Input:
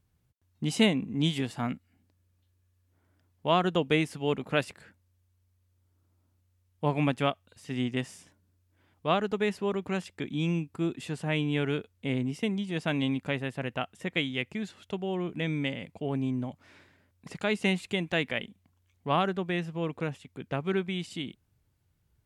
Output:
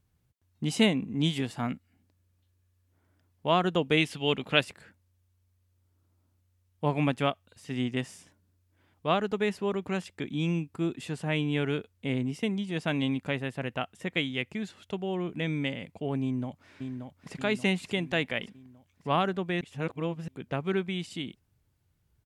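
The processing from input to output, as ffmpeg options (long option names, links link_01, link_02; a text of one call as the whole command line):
ffmpeg -i in.wav -filter_complex "[0:a]asettb=1/sr,asplit=3[link_01][link_02][link_03];[link_01]atrim=end=3.974[link_04];[link_02]atrim=start=3.97:end=4.6,asetpts=PTS-STARTPTS,afade=type=in:duration=0.004:curve=qsin,afade=type=out:start_time=0.626:duration=0.004:curve=qsin,equalizer=frequency=3200:width_type=o:width=1:gain=10.5[link_05];[link_03]atrim=start=4.596[link_06];[link_04][link_05]acrossfade=duration=0.004:curve1=hsin:curve2=qsin[link_07];[link_07][link_06]acrossfade=duration=0.004:curve1=qsin:curve2=hsin,asplit=2[link_08][link_09];[link_09]afade=type=in:start_time=16.22:duration=0.01,afade=type=out:start_time=17.33:duration=0.01,aecho=0:1:580|1160|1740|2320|2900|3480|4060:0.473151|0.260233|0.143128|0.0787205|0.0432963|0.023813|0.0130971[link_10];[link_08][link_10]amix=inputs=2:normalize=0,asplit=3[link_11][link_12][link_13];[link_11]atrim=end=19.612[link_14];[link_12]atrim=start=19.608:end=20.282,asetpts=PTS-STARTPTS,areverse[link_15];[link_13]atrim=start=20.278[link_16];[link_14][link_15]acrossfade=duration=0.004:curve1=hsin:curve2=hsin[link_17];[link_17][link_16]acrossfade=duration=0.004:curve1=hsin:curve2=hsin" out.wav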